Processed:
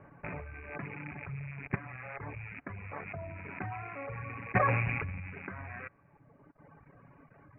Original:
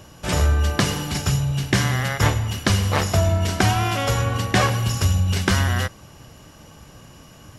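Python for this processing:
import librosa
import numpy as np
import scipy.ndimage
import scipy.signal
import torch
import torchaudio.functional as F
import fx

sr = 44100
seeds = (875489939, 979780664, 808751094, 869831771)

y = fx.rattle_buzz(x, sr, strikes_db=-30.0, level_db=-12.0)
y = fx.low_shelf(y, sr, hz=65.0, db=-11.5)
y = fx.level_steps(y, sr, step_db=16)
y = scipy.signal.sosfilt(scipy.signal.butter(16, 2400.0, 'lowpass', fs=sr, output='sos'), y)
y = y + 0.39 * np.pad(y, (int(7.1 * sr / 1000.0), 0))[:len(y)]
y = y + 10.0 ** (-23.5 / 20.0) * np.pad(y, (int(315 * sr / 1000.0), 0))[:len(y)]
y = fx.dereverb_blind(y, sr, rt60_s=1.7)
y = fx.sustainer(y, sr, db_per_s=27.0, at=(3.06, 5.31), fade=0.02)
y = F.gain(torch.from_numpy(y), -6.0).numpy()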